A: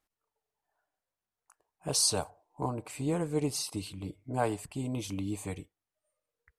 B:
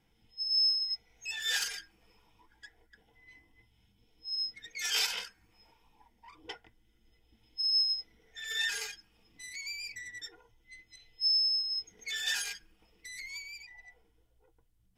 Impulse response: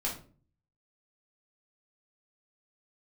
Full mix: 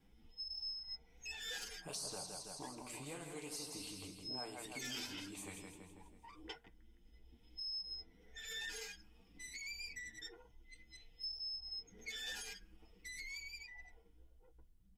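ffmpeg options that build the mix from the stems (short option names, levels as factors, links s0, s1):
-filter_complex "[0:a]flanger=delay=2.5:depth=9.6:regen=45:speed=1.9:shape=triangular,volume=0.75,asplit=3[s0][s1][s2];[s1]volume=0.376[s3];[s2]volume=0.596[s4];[1:a]lowshelf=f=400:g=10.5,asplit=2[s5][s6];[s6]adelay=8.2,afreqshift=2.7[s7];[s5][s7]amix=inputs=2:normalize=1,volume=0.891[s8];[2:a]atrim=start_sample=2205[s9];[s3][s9]afir=irnorm=-1:irlink=0[s10];[s4]aecho=0:1:163|326|489|652|815|978|1141:1|0.48|0.23|0.111|0.0531|0.0255|0.0122[s11];[s0][s8][s10][s11]amix=inputs=4:normalize=0,equalizer=f=110:t=o:w=0.3:g=-14,acrossover=split=780|1900[s12][s13][s14];[s12]acompressor=threshold=0.00251:ratio=4[s15];[s13]acompressor=threshold=0.00141:ratio=4[s16];[s14]acompressor=threshold=0.00501:ratio=4[s17];[s15][s16][s17]amix=inputs=3:normalize=0"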